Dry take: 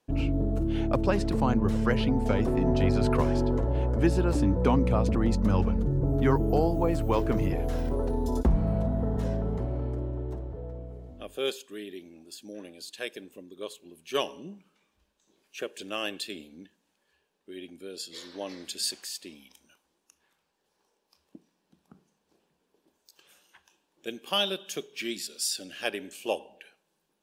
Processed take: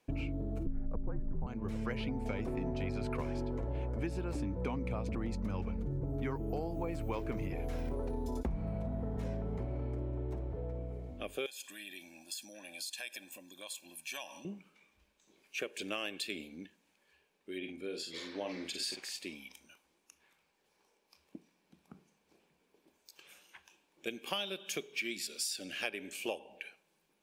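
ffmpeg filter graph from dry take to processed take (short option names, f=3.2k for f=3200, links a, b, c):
-filter_complex "[0:a]asettb=1/sr,asplit=3[a][b][c];[a]atrim=end=0.664[d];[b]atrim=start=0.66:end=1.47,asetpts=PTS-STARTPTS,afade=t=in:d=0.004:c=qsin,afade=t=out:st=0.806:d=0.004:c=qsin,asuperstop=centerf=5100:order=12:qfactor=0.51,aemphasis=mode=reproduction:type=riaa,afreqshift=-60[e];[c]atrim=start=1.466[f];[d][e]acrossfade=d=0.004:c1=hsin:c2=qsin[g];[g][f]acrossfade=d=0.004:c1=qsin:c2=hsin,asettb=1/sr,asplit=3[h][i][j];[h]atrim=end=11.464[k];[i]atrim=start=11.46:end=14.45,asetpts=PTS-STARTPTS,afade=t=in:d=0.004:c=qsin,afade=t=out:st=2.986:d=0.004:c=qsin,aecho=1:1:1.2:0.93,atrim=end_sample=131859,acompressor=threshold=-45dB:ratio=4:attack=3.2:release=140:knee=1:detection=peak,bass=f=250:g=-15,treble=f=4k:g=9[l];[j]atrim=start=14.446[m];[k][l]acrossfade=d=0.004:c1=hsin:c2=qsin[n];[n][m]acrossfade=d=0.004:c1=qsin:c2=hsin,asettb=1/sr,asplit=3[o][p][q];[o]atrim=end=17.584[r];[p]atrim=start=17.58:end=19.19,asetpts=PTS-STARTPTS,afade=t=in:d=0.004:c=qsin,afade=t=out:st=1.606:d=0.004:c=qsin,lowpass=f=3.3k:p=1,asplit=2[s][t];[t]adelay=49,volume=-6dB[u];[s][u]amix=inputs=2:normalize=0,atrim=end_sample=71001[v];[q]atrim=start=19.186[w];[r][v]acrossfade=d=0.004:c1=hsin:c2=qsin[x];[x][w]acrossfade=d=0.004:c1=qsin:c2=hsin,equalizer=f=2.3k:t=o:w=0.3:g=9.5,acompressor=threshold=-34dB:ratio=6"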